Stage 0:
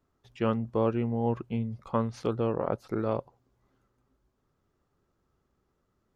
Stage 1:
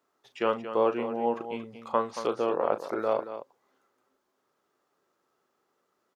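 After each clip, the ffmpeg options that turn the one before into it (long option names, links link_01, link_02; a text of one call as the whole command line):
ffmpeg -i in.wav -af "highpass=440,aecho=1:1:37.9|227.4:0.282|0.282,volume=4.5dB" out.wav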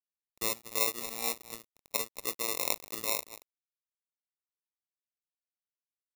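ffmpeg -i in.wav -af "acrusher=samples=28:mix=1:aa=0.000001,aeval=exprs='sgn(val(0))*max(abs(val(0))-0.0141,0)':channel_layout=same,crystalizer=i=7:c=0,volume=-12.5dB" out.wav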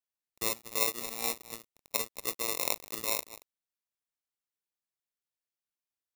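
ffmpeg -i in.wav -af "acrusher=bits=3:mode=log:mix=0:aa=0.000001" out.wav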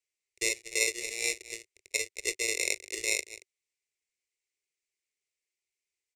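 ffmpeg -i in.wav -filter_complex "[0:a]firequalizer=gain_entry='entry(100,0);entry(160,-27);entry(380,8);entry(790,-14);entry(1200,-21);entry(2100,13);entry(3300,2);entry(5400,6);entry(7700,8);entry(15000,-21)':delay=0.05:min_phase=1,asplit=2[link_01][link_02];[link_02]alimiter=limit=-13.5dB:level=0:latency=1:release=439,volume=-1dB[link_03];[link_01][link_03]amix=inputs=2:normalize=0,volume=-5dB" out.wav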